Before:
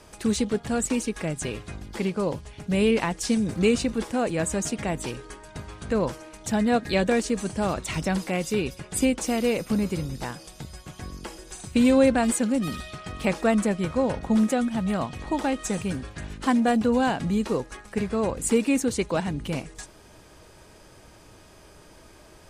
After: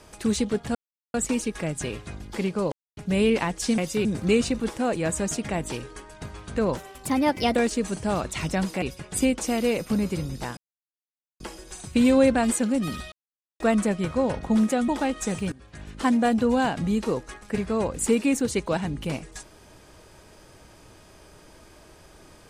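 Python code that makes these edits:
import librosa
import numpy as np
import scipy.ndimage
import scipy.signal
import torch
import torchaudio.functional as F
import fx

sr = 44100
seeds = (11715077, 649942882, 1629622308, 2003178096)

y = fx.edit(x, sr, fx.insert_silence(at_s=0.75, length_s=0.39),
    fx.silence(start_s=2.33, length_s=0.25),
    fx.speed_span(start_s=6.11, length_s=0.98, speed=1.24),
    fx.move(start_s=8.35, length_s=0.27, to_s=3.39),
    fx.silence(start_s=10.37, length_s=0.83),
    fx.silence(start_s=12.92, length_s=0.48),
    fx.cut(start_s=14.68, length_s=0.63),
    fx.fade_in_from(start_s=15.95, length_s=0.55, floor_db=-20.0), tone=tone)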